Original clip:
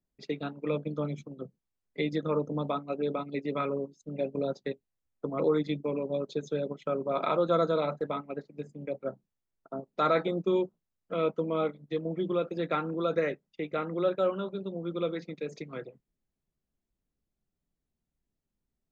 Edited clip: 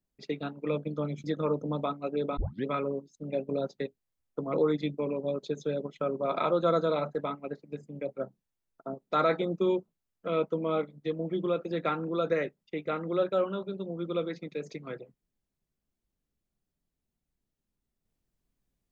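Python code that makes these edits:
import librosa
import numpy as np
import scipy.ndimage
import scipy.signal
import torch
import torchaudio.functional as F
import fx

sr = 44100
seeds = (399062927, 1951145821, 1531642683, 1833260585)

y = fx.edit(x, sr, fx.cut(start_s=1.24, length_s=0.86),
    fx.tape_start(start_s=3.23, length_s=0.28), tone=tone)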